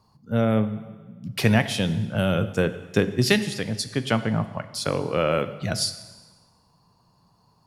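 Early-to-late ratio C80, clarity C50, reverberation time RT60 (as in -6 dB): 14.5 dB, 13.0 dB, 1.4 s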